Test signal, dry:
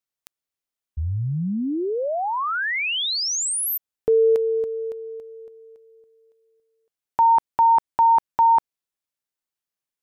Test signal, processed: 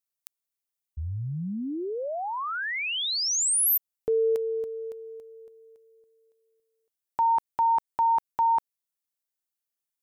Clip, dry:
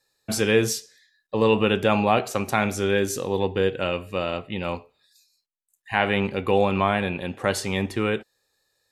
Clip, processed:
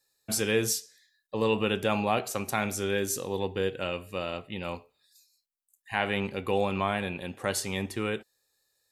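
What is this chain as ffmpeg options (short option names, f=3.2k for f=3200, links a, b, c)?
-af "highshelf=f=6.2k:g=11,volume=-7dB"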